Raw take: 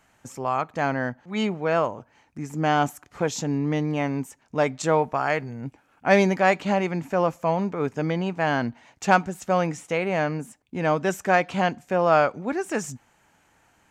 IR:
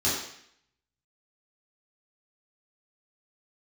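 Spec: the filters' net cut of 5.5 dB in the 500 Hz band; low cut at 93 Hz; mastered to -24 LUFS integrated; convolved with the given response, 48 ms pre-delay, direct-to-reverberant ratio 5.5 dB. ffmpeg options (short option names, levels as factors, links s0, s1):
-filter_complex "[0:a]highpass=93,equalizer=f=500:t=o:g=-7,asplit=2[s0][s1];[1:a]atrim=start_sample=2205,adelay=48[s2];[s1][s2]afir=irnorm=-1:irlink=0,volume=0.141[s3];[s0][s3]amix=inputs=2:normalize=0,volume=1.19"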